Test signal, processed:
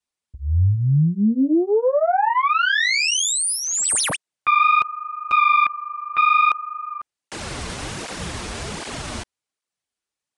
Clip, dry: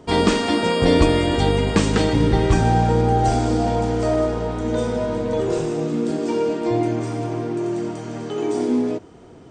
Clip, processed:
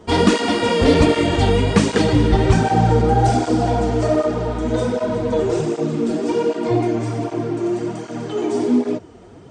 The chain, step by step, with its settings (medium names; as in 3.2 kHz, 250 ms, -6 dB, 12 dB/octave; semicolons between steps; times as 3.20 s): self-modulated delay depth 0.097 ms; resampled via 22.05 kHz; cancelling through-zero flanger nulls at 1.3 Hz, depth 7.9 ms; trim +5 dB